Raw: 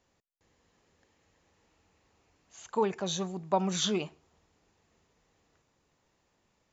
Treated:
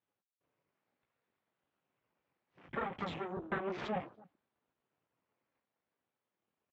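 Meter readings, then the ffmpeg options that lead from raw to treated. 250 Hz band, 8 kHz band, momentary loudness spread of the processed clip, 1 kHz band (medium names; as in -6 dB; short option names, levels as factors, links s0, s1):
-9.5 dB, no reading, 5 LU, -6.5 dB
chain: -af "afftfilt=real='re*pow(10,12/40*sin(2*PI*(0.84*log(max(b,1)*sr/1024/100)/log(2)-(-0.65)*(pts-256)/sr)))':imag='im*pow(10,12/40*sin(2*PI*(0.84*log(max(b,1)*sr/1024/100)/log(2)-(-0.65)*(pts-256)/sr)))':win_size=1024:overlap=0.75,flanger=delay=16.5:depth=7.3:speed=0.99,acompressor=threshold=0.0126:ratio=4,aeval=exprs='abs(val(0))':c=same,highpass=100,lowpass=3000,aemphasis=mode=reproduction:type=50kf,aecho=1:1:285:0.0794,afwtdn=0.001,volume=2.66" -ar 48000 -c:a libvorbis -b:a 96k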